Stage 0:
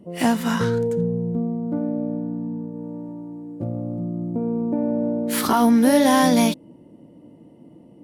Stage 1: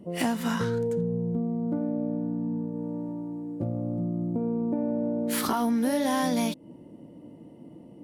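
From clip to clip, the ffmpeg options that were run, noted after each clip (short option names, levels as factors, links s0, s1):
-af "acompressor=threshold=0.0501:ratio=3"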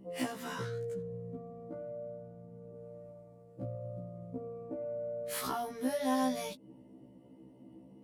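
-af "afftfilt=real='re*1.73*eq(mod(b,3),0)':imag='im*1.73*eq(mod(b,3),0)':win_size=2048:overlap=0.75,volume=0.531"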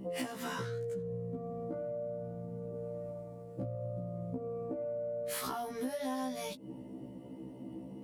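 -af "acompressor=threshold=0.00562:ratio=5,volume=2.82"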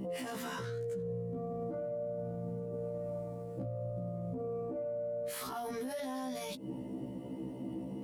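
-af "alimiter=level_in=4.47:limit=0.0631:level=0:latency=1:release=24,volume=0.224,volume=1.78"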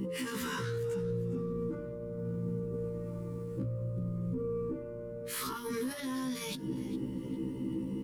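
-filter_complex "[0:a]asuperstop=centerf=690:order=4:qfactor=1.4,asplit=4[s0][s1][s2][s3];[s1]adelay=406,afreqshift=-110,volume=0.141[s4];[s2]adelay=812,afreqshift=-220,volume=0.0452[s5];[s3]adelay=1218,afreqshift=-330,volume=0.0145[s6];[s0][s4][s5][s6]amix=inputs=4:normalize=0,volume=1.78"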